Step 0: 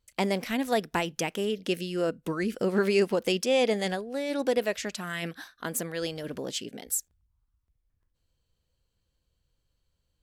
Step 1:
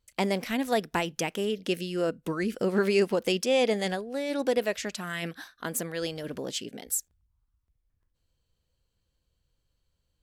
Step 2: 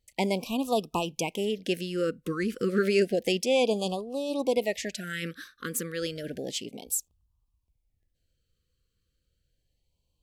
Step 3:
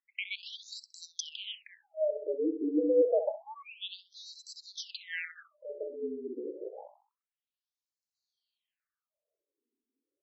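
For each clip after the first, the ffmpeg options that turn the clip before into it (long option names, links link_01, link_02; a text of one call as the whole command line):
ffmpeg -i in.wav -af anull out.wav
ffmpeg -i in.wav -af "afftfilt=real='re*(1-between(b*sr/1024,740*pow(1800/740,0.5+0.5*sin(2*PI*0.31*pts/sr))/1.41,740*pow(1800/740,0.5+0.5*sin(2*PI*0.31*pts/sr))*1.41))':imag='im*(1-between(b*sr/1024,740*pow(1800/740,0.5+0.5*sin(2*PI*0.31*pts/sr))/1.41,740*pow(1800/740,0.5+0.5*sin(2*PI*0.31*pts/sr))*1.41))':win_size=1024:overlap=0.75" out.wav
ffmpeg -i in.wav -filter_complex "[0:a]afreqshift=97,asplit=2[link_01][link_02];[link_02]adelay=65,lowpass=frequency=2300:poles=1,volume=-9dB,asplit=2[link_03][link_04];[link_04]adelay=65,lowpass=frequency=2300:poles=1,volume=0.54,asplit=2[link_05][link_06];[link_06]adelay=65,lowpass=frequency=2300:poles=1,volume=0.54,asplit=2[link_07][link_08];[link_08]adelay=65,lowpass=frequency=2300:poles=1,volume=0.54,asplit=2[link_09][link_10];[link_10]adelay=65,lowpass=frequency=2300:poles=1,volume=0.54,asplit=2[link_11][link_12];[link_12]adelay=65,lowpass=frequency=2300:poles=1,volume=0.54[link_13];[link_01][link_03][link_05][link_07][link_09][link_11][link_13]amix=inputs=7:normalize=0,afftfilt=real='re*between(b*sr/1024,330*pow(5600/330,0.5+0.5*sin(2*PI*0.28*pts/sr))/1.41,330*pow(5600/330,0.5+0.5*sin(2*PI*0.28*pts/sr))*1.41)':imag='im*between(b*sr/1024,330*pow(5600/330,0.5+0.5*sin(2*PI*0.28*pts/sr))/1.41,330*pow(5600/330,0.5+0.5*sin(2*PI*0.28*pts/sr))*1.41)':win_size=1024:overlap=0.75" out.wav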